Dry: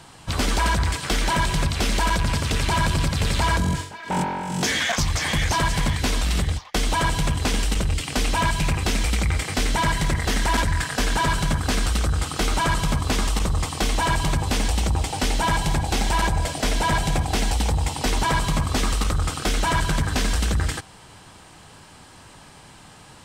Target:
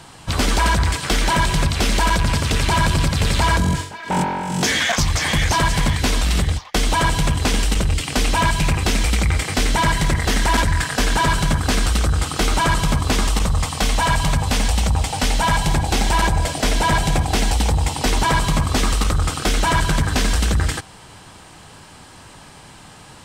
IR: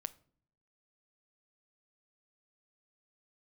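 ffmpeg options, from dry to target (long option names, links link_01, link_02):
-filter_complex "[0:a]asettb=1/sr,asplit=3[link_01][link_02][link_03];[link_01]atrim=end=13.444[link_04];[link_02]atrim=start=13.44:end=15.66,asetpts=PTS-STARTPTS,afade=type=in:duration=0.004:curve=qsin,afade=type=out:start_time=2.216:duration=0.004:curve=qsin,equalizer=frequency=350:width_type=o:width=0.38:gain=-10.5[link_05];[link_03]atrim=start=15.656[link_06];[link_04][link_05]acrossfade=duration=0.004:curve1=hsin:curve2=qsin[link_07];[link_07][link_06]acrossfade=duration=0.004:curve1=qsin:curve2=hsin,volume=4dB"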